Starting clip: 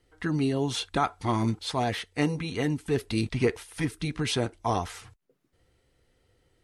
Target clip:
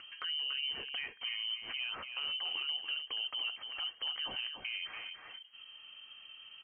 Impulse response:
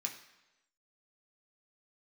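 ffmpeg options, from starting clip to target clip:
-filter_complex "[0:a]tiltshelf=f=1400:g=3.5,acompressor=threshold=0.0282:ratio=8,lowpass=f=2700:t=q:w=0.5098,lowpass=f=2700:t=q:w=0.6013,lowpass=f=2700:t=q:w=0.9,lowpass=f=2700:t=q:w=2.563,afreqshift=-3200,alimiter=level_in=2.11:limit=0.0631:level=0:latency=1:release=22,volume=0.473,aecho=1:1:287:0.447,asplit=2[s0][s1];[1:a]atrim=start_sample=2205[s2];[s1][s2]afir=irnorm=-1:irlink=0,volume=0.0944[s3];[s0][s3]amix=inputs=2:normalize=0,acompressor=mode=upward:threshold=0.00794:ratio=2.5"

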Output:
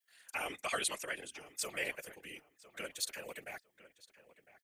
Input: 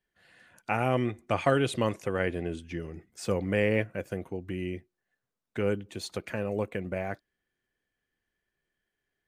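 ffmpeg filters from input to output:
-filter_complex "[0:a]aderivative,afftfilt=real='hypot(re,im)*cos(2*PI*random(0))':imag='hypot(re,im)*sin(2*PI*random(1))':win_size=512:overlap=0.75,afreqshift=13,atempo=2,asplit=2[s0][s1];[s1]adelay=1005,lowpass=f=2800:p=1,volume=0.15,asplit=2[s2][s3];[s3]adelay=1005,lowpass=f=2800:p=1,volume=0.23[s4];[s2][s4]amix=inputs=2:normalize=0[s5];[s0][s5]amix=inputs=2:normalize=0,volume=5.01"

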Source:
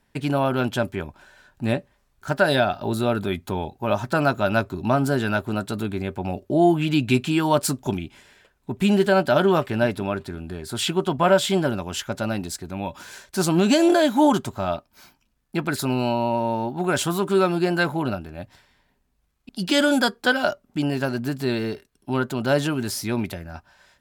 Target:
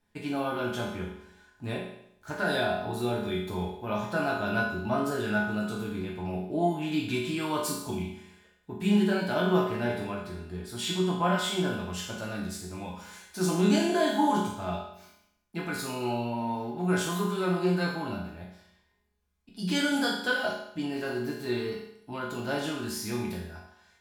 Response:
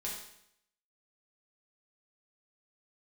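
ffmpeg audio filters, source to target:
-filter_complex "[1:a]atrim=start_sample=2205[s0];[0:a][s0]afir=irnorm=-1:irlink=0,volume=0.422"

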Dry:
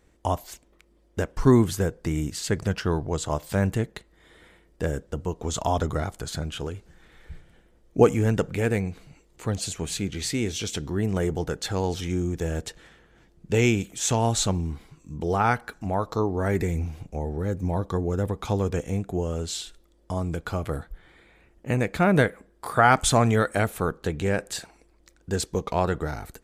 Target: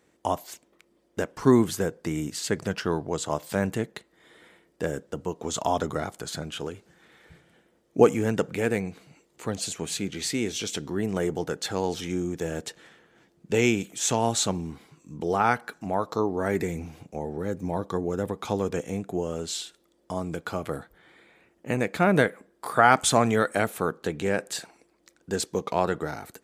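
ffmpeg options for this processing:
-af "highpass=170"

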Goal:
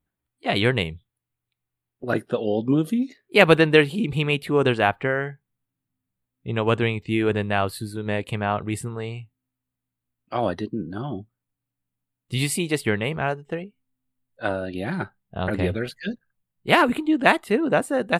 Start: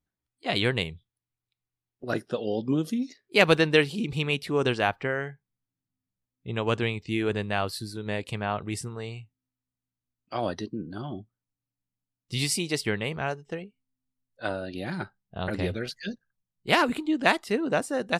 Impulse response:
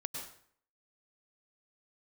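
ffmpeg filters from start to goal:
-af "equalizer=f=5500:t=o:w=0.72:g=-15,volume=1.88"

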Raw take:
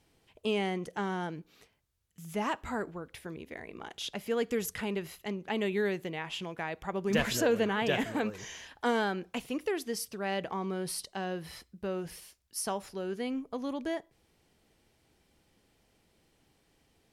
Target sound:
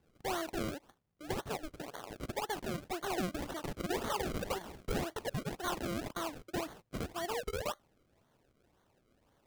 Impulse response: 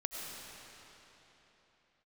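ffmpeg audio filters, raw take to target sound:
-af "alimiter=level_in=1.06:limit=0.0631:level=0:latency=1:release=266,volume=0.944,asetrate=79821,aresample=44100,acrusher=samples=34:mix=1:aa=0.000001:lfo=1:lforange=34:lforate=1.9,volume=0.794"

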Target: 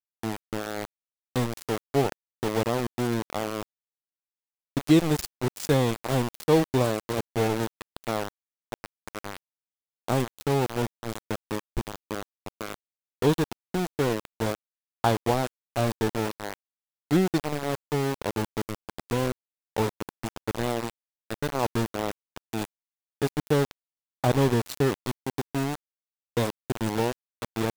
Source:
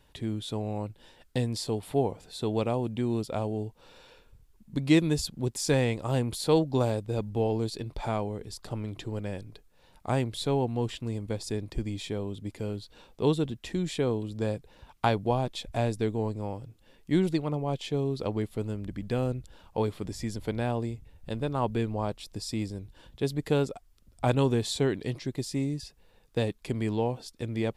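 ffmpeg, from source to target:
-af "equalizer=f=2300:w=2:g=-10.5,aeval=exprs='val(0)*gte(abs(val(0)),0.0447)':c=same,volume=1.41"

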